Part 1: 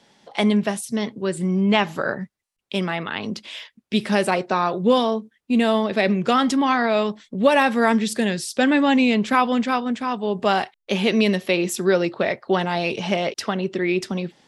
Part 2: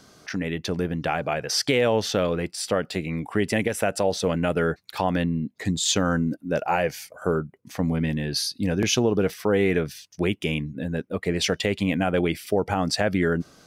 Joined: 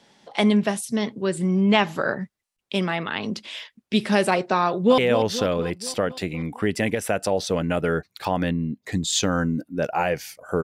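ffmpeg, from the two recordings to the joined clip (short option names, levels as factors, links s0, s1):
-filter_complex "[0:a]apad=whole_dur=10.63,atrim=end=10.63,atrim=end=4.982[s0];[1:a]atrim=start=1.708:end=7.36[s1];[s0][s1]acrossfade=d=0.004:c1=hsin:c2=hsin,asplit=2[s2][s3];[s3]afade=t=in:st=4.66:d=0.01,afade=t=out:st=4.98:d=0.01,aecho=0:1:240|480|720|960|1200|1440|1680|1920:0.298538|0.19405|0.126132|0.0819861|0.0532909|0.0346391|0.0225154|0.014635[s4];[s2][s4]amix=inputs=2:normalize=0"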